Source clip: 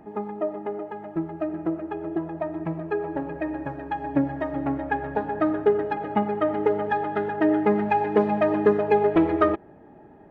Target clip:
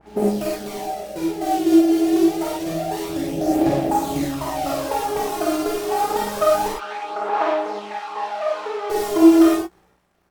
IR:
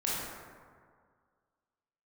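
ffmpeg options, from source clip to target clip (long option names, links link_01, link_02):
-filter_complex "[0:a]afwtdn=0.0501,equalizer=frequency=1000:width_type=o:width=2:gain=6.5,acompressor=threshold=-21dB:ratio=10,acrusher=bits=3:mode=log:mix=0:aa=0.000001,asoftclip=type=tanh:threshold=-17dB,aphaser=in_gain=1:out_gain=1:delay=2.9:decay=0.7:speed=0.27:type=sinusoidal,aeval=exprs='val(0)+0.00141*(sin(2*PI*60*n/s)+sin(2*PI*2*60*n/s)/2+sin(2*PI*3*60*n/s)/3+sin(2*PI*4*60*n/s)/4+sin(2*PI*5*60*n/s)/5)':channel_layout=same,acrusher=bits=7:mix=0:aa=0.5,asettb=1/sr,asplit=3[link_01][link_02][link_03];[link_01]atrim=end=6.684[link_04];[link_02]atrim=start=6.68:end=8.9,asetpts=PTS-STARTPTS,afade=type=in:duration=0.004:curve=qsin,afade=type=out:start_time=2.216:duration=0.004:curve=qsin,highpass=770,lowpass=2900[link_05];[link_03]atrim=start=8.896[link_06];[link_04][link_05]acrossfade=duration=0.004:curve1=hsin:curve2=qsin[link_07];[link_07][link_06]acrossfade=duration=0.004:curve1=qsin:curve2=hsin,asplit=2[link_08][link_09];[link_09]adelay=21,volume=-13dB[link_10];[link_08][link_10]amix=inputs=2:normalize=0[link_11];[1:a]atrim=start_sample=2205,atrim=end_sample=4410,asetrate=37485,aresample=44100[link_12];[link_11][link_12]afir=irnorm=-1:irlink=0,adynamicequalizer=threshold=0.0355:dfrequency=1900:dqfactor=0.7:tfrequency=1900:tqfactor=0.7:attack=5:release=100:ratio=0.375:range=2.5:mode=boostabove:tftype=highshelf,volume=-2dB"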